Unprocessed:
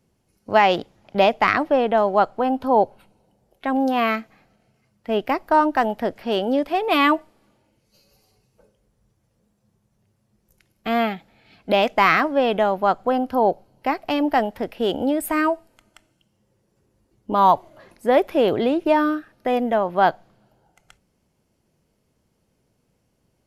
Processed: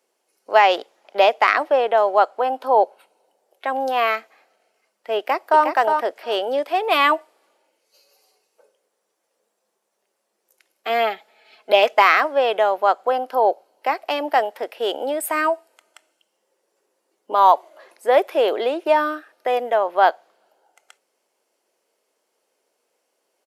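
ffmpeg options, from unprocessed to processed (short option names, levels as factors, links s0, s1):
-filter_complex "[0:a]asplit=2[s0][s1];[s1]afade=t=in:st=5.17:d=0.01,afade=t=out:st=5.64:d=0.01,aecho=0:1:360|720:0.530884|0.0530884[s2];[s0][s2]amix=inputs=2:normalize=0,asettb=1/sr,asplit=3[s3][s4][s5];[s3]atrim=end=10.894[s6];[s4]atrim=start=10.89:end=12.02,asetpts=PTS-STARTPTS,afade=t=in:d=0.004:c=qsin,afade=t=out:st=1.126:d=0.004:c=qsin,aecho=1:1:4.7:0.51,atrim=end_sample=49833[s7];[s5]atrim=start=12.016[s8];[s6][s7]acrossfade=d=0.004:c1=hsin:c2=qsin[s9];[s9][s8]acrossfade=d=0.004:c1=qsin:c2=hsin,highpass=f=420:w=0.5412,highpass=f=420:w=1.3066,equalizer=f=8300:w=4.2:g=3.5,volume=1.26"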